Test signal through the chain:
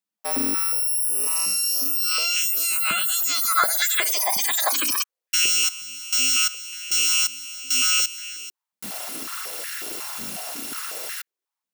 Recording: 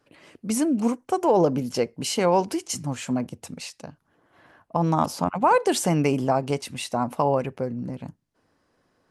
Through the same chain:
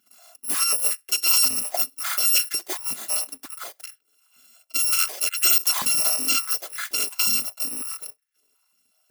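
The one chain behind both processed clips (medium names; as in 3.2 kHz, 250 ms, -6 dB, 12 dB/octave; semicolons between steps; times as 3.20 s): bit-reversed sample order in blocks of 256 samples; step-sequenced high-pass 5.5 Hz 200–1700 Hz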